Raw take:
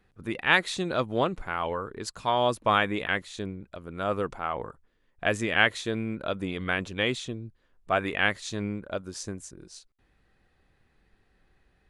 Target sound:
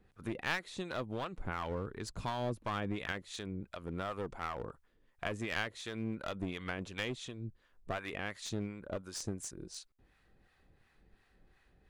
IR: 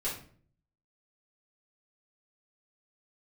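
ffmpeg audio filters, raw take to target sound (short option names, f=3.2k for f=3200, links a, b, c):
-filter_complex "[0:a]asettb=1/sr,asplit=3[a][b][c];[a]atrim=end=1.444[d];[b]atrim=start=1.44:end=3.12,asetpts=PTS-STARTPTS,afade=t=in:d=0.004:c=qsin,afade=t=out:st=1.676:d=0.004:c=qsin,lowshelf=f=290:g=11[e];[c]atrim=start=3.116[f];[d][e]acrossfade=d=0.004:c1=hsin:c2=qsin[g];[g][f]acrossfade=d=0.004:c1=qsin:c2=hsin,acompressor=threshold=-35dB:ratio=3,acrossover=split=730[h][i];[h]aeval=exprs='val(0)*(1-0.7/2+0.7/2*cos(2*PI*2.8*n/s))':c=same[j];[i]aeval=exprs='val(0)*(1-0.7/2-0.7/2*cos(2*PI*2.8*n/s))':c=same[k];[j][k]amix=inputs=2:normalize=0,aeval=exprs='clip(val(0),-1,0.0112)':c=same,volume=2dB"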